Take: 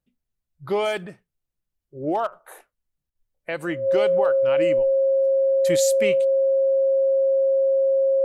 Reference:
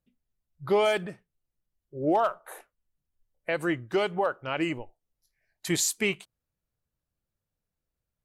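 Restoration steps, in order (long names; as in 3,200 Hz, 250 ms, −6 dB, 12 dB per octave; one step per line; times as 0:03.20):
notch filter 540 Hz, Q 30
repair the gap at 0:02.27/0:03.10, 50 ms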